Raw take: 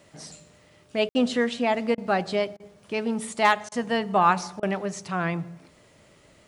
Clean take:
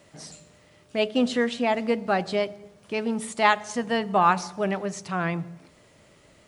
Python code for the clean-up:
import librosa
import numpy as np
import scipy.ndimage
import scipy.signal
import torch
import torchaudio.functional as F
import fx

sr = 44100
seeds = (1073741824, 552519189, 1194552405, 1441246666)

y = fx.fix_declip(x, sr, threshold_db=-8.0)
y = fx.fix_ambience(y, sr, seeds[0], print_start_s=5.74, print_end_s=6.24, start_s=1.09, end_s=1.15)
y = fx.fix_interpolate(y, sr, at_s=(1.95, 2.57, 3.69, 4.6), length_ms=27.0)